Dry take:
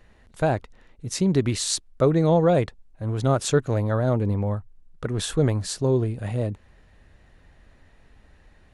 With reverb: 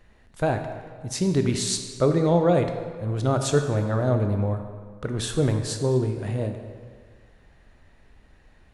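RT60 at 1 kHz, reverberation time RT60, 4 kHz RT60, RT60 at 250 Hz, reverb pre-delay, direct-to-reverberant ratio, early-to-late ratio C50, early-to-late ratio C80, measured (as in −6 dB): 1.8 s, 1.7 s, 1.3 s, 1.7 s, 17 ms, 5.5 dB, 6.5 dB, 8.0 dB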